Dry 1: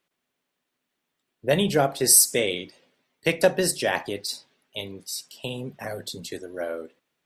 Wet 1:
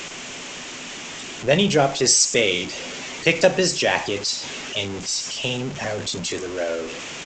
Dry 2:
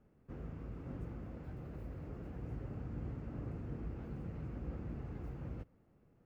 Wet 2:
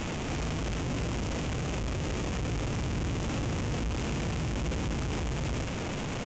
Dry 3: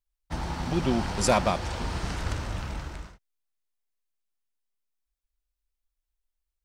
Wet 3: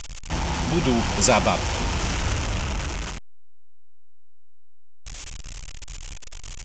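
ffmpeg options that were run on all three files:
ffmpeg -i in.wav -af "aeval=exprs='val(0)+0.5*0.0299*sgn(val(0))':channel_layout=same,aexciter=amount=1.8:drive=3.6:freq=2300,aresample=16000,aresample=44100,volume=2.5dB" out.wav

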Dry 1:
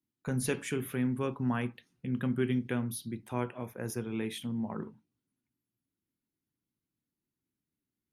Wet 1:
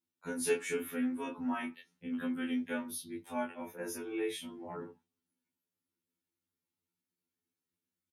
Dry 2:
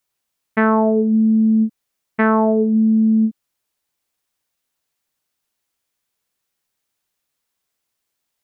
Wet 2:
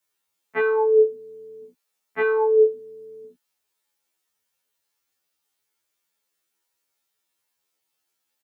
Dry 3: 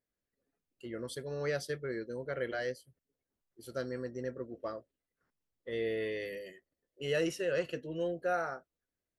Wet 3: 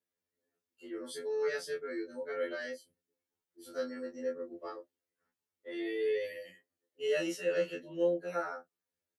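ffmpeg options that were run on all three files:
ffmpeg -i in.wav -filter_complex "[0:a]highpass=frequency=200:poles=1,acrossover=split=260|470|4900[link_01][link_02][link_03][link_04];[link_01]acompressor=threshold=-39dB:ratio=6[link_05];[link_05][link_02][link_03][link_04]amix=inputs=4:normalize=0,asplit=2[link_06][link_07];[link_07]adelay=21,volume=-3dB[link_08];[link_06][link_08]amix=inputs=2:normalize=0,afftfilt=real='re*2*eq(mod(b,4),0)':imag='im*2*eq(mod(b,4),0)':win_size=2048:overlap=0.75" out.wav

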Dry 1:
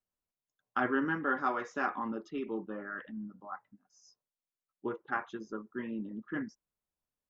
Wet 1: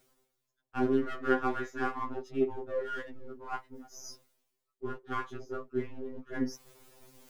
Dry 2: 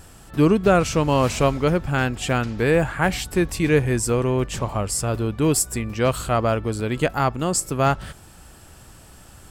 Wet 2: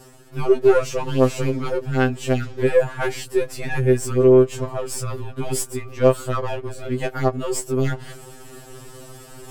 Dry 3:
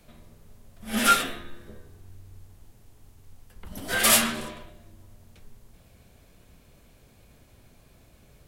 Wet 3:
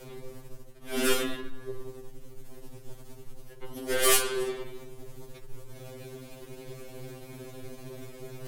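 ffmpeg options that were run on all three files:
ffmpeg -i in.wav -af "aeval=exprs='if(lt(val(0),0),0.447*val(0),val(0))':channel_layout=same,areverse,acompressor=mode=upward:threshold=-28dB:ratio=2.5,areverse,equalizer=frequency=400:width_type=o:width=0.9:gain=11,afftfilt=real='re*2.45*eq(mod(b,6),0)':imag='im*2.45*eq(mod(b,6),0)':win_size=2048:overlap=0.75" out.wav

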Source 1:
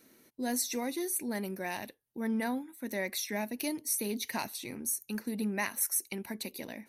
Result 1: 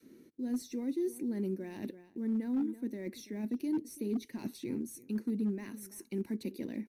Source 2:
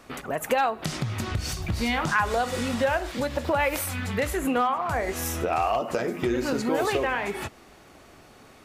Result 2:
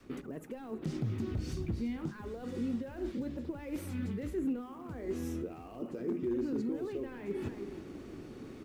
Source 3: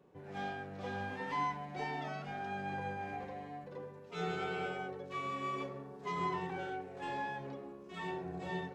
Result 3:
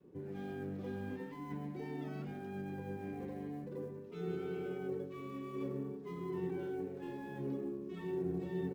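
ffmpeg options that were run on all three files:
ffmpeg -i in.wav -filter_complex "[0:a]asplit=2[link_01][link_02];[link_02]highpass=frequency=720:poles=1,volume=13dB,asoftclip=type=tanh:threshold=-9.5dB[link_03];[link_01][link_03]amix=inputs=2:normalize=0,lowpass=frequency=3200:poles=1,volume=-6dB,asplit=2[link_04][link_05];[link_05]adelay=332.4,volume=-21dB,highshelf=frequency=4000:gain=-7.48[link_06];[link_04][link_06]amix=inputs=2:normalize=0,asplit=2[link_07][link_08];[link_08]alimiter=limit=-21dB:level=0:latency=1,volume=-1dB[link_09];[link_07][link_09]amix=inputs=2:normalize=0,acrusher=bits=6:mode=log:mix=0:aa=0.000001,adynamicequalizer=threshold=0.0282:dfrequency=280:dqfactor=0.71:tfrequency=280:tqfactor=0.71:attack=5:release=100:ratio=0.375:range=2:mode=boostabove:tftype=bell,areverse,acompressor=threshold=-31dB:ratio=10,areverse,firequalizer=gain_entry='entry(330,0);entry(660,-22);entry(5600,-18)':delay=0.05:min_phase=1,asoftclip=type=hard:threshold=-30dB,volume=3dB" out.wav

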